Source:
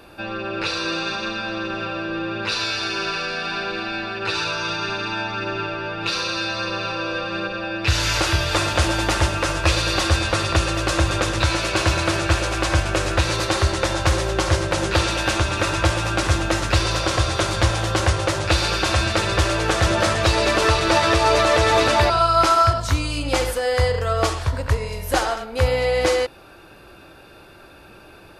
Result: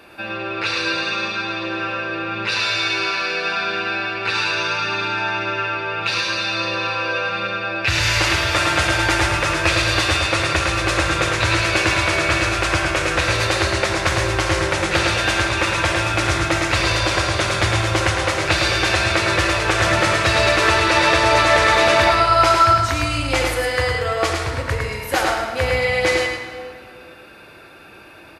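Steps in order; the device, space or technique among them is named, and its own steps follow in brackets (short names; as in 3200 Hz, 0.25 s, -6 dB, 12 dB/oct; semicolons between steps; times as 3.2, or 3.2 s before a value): PA in a hall (HPF 120 Hz 6 dB/oct; bell 2100 Hz +7 dB 0.84 oct; echo 0.107 s -4.5 dB; reverb RT60 2.2 s, pre-delay 23 ms, DRR 6.5 dB); gain -1 dB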